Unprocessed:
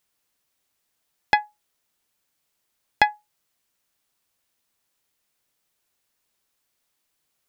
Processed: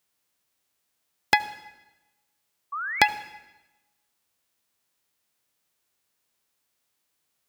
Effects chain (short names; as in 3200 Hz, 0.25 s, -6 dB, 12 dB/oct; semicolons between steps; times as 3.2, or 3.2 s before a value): spectral whitening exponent 0.6; HPF 45 Hz; painted sound rise, 2.72–3.08, 1100–2800 Hz -30 dBFS; reverb RT60 1.1 s, pre-delay 67 ms, DRR 15.5 dB; gain -1 dB